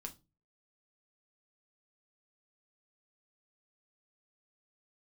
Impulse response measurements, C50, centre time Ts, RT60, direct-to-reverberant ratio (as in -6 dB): 17.5 dB, 8 ms, 0.25 s, 3.0 dB